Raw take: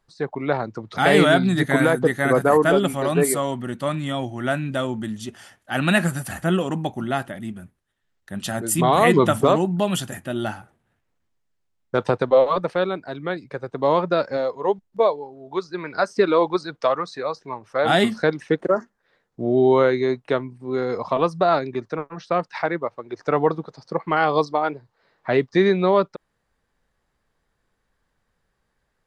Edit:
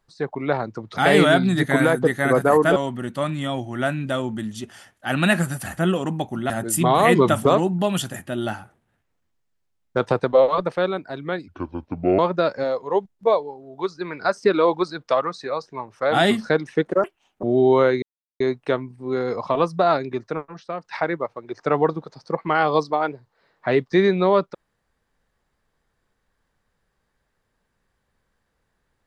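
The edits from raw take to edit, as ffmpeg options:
ffmpeg -i in.wav -filter_complex "[0:a]asplit=9[link_01][link_02][link_03][link_04][link_05][link_06][link_07][link_08][link_09];[link_01]atrim=end=2.762[link_10];[link_02]atrim=start=3.408:end=7.152[link_11];[link_03]atrim=start=8.478:end=13.464[link_12];[link_04]atrim=start=13.46:end=13.92,asetpts=PTS-STARTPTS,asetrate=28665,aresample=44100,atrim=end_sample=31209,asetpts=PTS-STARTPTS[link_13];[link_05]atrim=start=13.916:end=18.774[link_14];[link_06]atrim=start=18.77:end=19.43,asetpts=PTS-STARTPTS,asetrate=73647,aresample=44100[link_15];[link_07]atrim=start=19.426:end=20.02,asetpts=PTS-STARTPTS,afade=type=out:start_time=0.59:duration=0.004:curve=hsin,apad=pad_dur=0.38[link_16];[link_08]atrim=start=20.02:end=22.46,asetpts=PTS-STARTPTS,afade=type=in:duration=0.004:curve=hsin,afade=type=out:start_time=2.01:duration=0.43:curve=qua:silence=0.334965[link_17];[link_09]atrim=start=22.46,asetpts=PTS-STARTPTS,afade=type=in:duration=0.004:curve=hsin:silence=0.334965[link_18];[link_10][link_11]acrossfade=duration=0.004:curve1=hsin:curve2=hsin[link_19];[link_19][link_12]acrossfade=duration=0.004:curve1=hsin:curve2=hsin[link_20];[link_20][link_13]acrossfade=duration=0.004:curve1=hsin:curve2=hsin[link_21];[link_21][link_14]acrossfade=duration=0.004:curve1=hsin:curve2=hsin[link_22];[link_22][link_15]acrossfade=duration=0.004:curve1=hsin:curve2=hsin[link_23];[link_16][link_17][link_18]concat=n=3:v=0:a=1[link_24];[link_23][link_24]acrossfade=duration=0.004:curve1=hsin:curve2=hsin" out.wav

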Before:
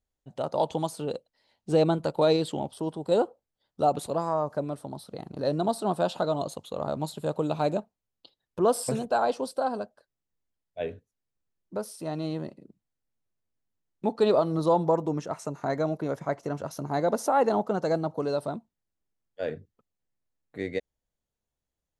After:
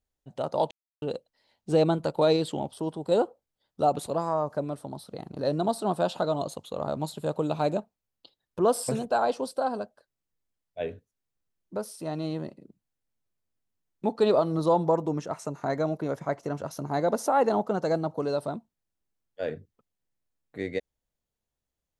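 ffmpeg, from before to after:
ffmpeg -i in.wav -filter_complex "[0:a]asplit=3[link_01][link_02][link_03];[link_01]atrim=end=0.71,asetpts=PTS-STARTPTS,afade=type=out:start_time=0.706:duration=0.004:curve=hsin[link_04];[link_02]atrim=start=0.71:end=1.02,asetpts=PTS-STARTPTS,volume=0[link_05];[link_03]atrim=start=1.02,asetpts=PTS-STARTPTS,afade=type=in:duration=0.004:curve=hsin[link_06];[link_04][link_05][link_06]concat=n=3:v=0:a=1" out.wav

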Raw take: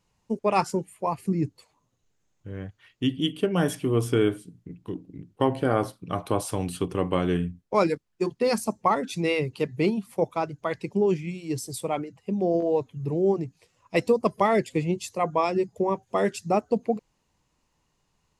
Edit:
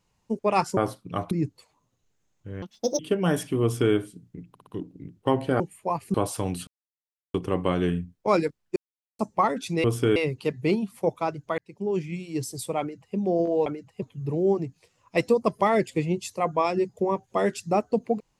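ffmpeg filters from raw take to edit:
ffmpeg -i in.wav -filter_complex "[0:a]asplit=18[link_01][link_02][link_03][link_04][link_05][link_06][link_07][link_08][link_09][link_10][link_11][link_12][link_13][link_14][link_15][link_16][link_17][link_18];[link_01]atrim=end=0.772[link_19];[link_02]atrim=start=5.738:end=6.282[link_20];[link_03]atrim=start=1.308:end=2.624[link_21];[link_04]atrim=start=2.62:end=3.31,asetpts=PTS-STARTPTS,asetrate=82026,aresample=44100[link_22];[link_05]atrim=start=3.306:end=4.872[link_23];[link_06]atrim=start=4.808:end=4.872[link_24];[link_07]atrim=start=4.808:end=4.872[link_25];[link_08]atrim=start=4.808:end=5.742[link_26];[link_09]atrim=start=0.768:end=1.312[link_27];[link_10]atrim=start=6.278:end=6.81,asetpts=PTS-STARTPTS,afade=type=out:start_time=0.528:duration=0.004:curve=hsin,apad=pad_dur=0.67[link_28];[link_11]atrim=start=6.81:end=8.23,asetpts=PTS-STARTPTS,afade=type=in:duration=0.004:curve=hsin,afade=type=out:start_time=1.416:duration=0.004:curve=hsin[link_29];[link_12]atrim=start=8.23:end=8.66,asetpts=PTS-STARTPTS,volume=0[link_30];[link_13]atrim=start=8.66:end=9.312,asetpts=PTS-STARTPTS,afade=type=in:duration=0.004:curve=hsin[link_31];[link_14]atrim=start=3.938:end=4.262[link_32];[link_15]atrim=start=9.308:end=10.73,asetpts=PTS-STARTPTS,afade=type=out:start_time=1.418:duration=0.004:curve=hsin[link_33];[link_16]atrim=start=10.73:end=12.812,asetpts=PTS-STARTPTS,afade=type=in:duration=0.55[link_34];[link_17]atrim=start=11.948:end=12.312[link_35];[link_18]atrim=start=12.808[link_36];[link_19][link_20]acrossfade=duration=0.004:curve1=hsin:curve2=hsin[link_37];[link_37][link_21]acrossfade=duration=0.004:curve1=hsin:curve2=hsin[link_38];[link_38][link_22]acrossfade=duration=0.004:curve1=hsin:curve2=hsin[link_39];[link_39][link_23]acrossfade=duration=0.004:curve1=hsin:curve2=hsin[link_40];[link_40][link_24]acrossfade=duration=0.004:curve1=hsin:curve2=hsin[link_41];[link_41][link_25]acrossfade=duration=0.004:curve1=hsin:curve2=hsin[link_42];[link_42][link_26]acrossfade=duration=0.004:curve1=hsin:curve2=hsin[link_43];[link_43][link_27]acrossfade=duration=0.004:curve1=hsin:curve2=hsin[link_44];[link_28][link_29][link_30][link_31]concat=n=4:v=0:a=1[link_45];[link_44][link_45]acrossfade=duration=0.004:curve1=hsin:curve2=hsin[link_46];[link_46][link_32]acrossfade=duration=0.004:curve1=hsin:curve2=hsin[link_47];[link_33][link_34]concat=n=2:v=0:a=1[link_48];[link_47][link_48]acrossfade=duration=0.004:curve1=hsin:curve2=hsin[link_49];[link_49][link_35]acrossfade=duration=0.004:curve1=hsin:curve2=hsin[link_50];[link_50][link_36]acrossfade=duration=0.004:curve1=hsin:curve2=hsin" out.wav

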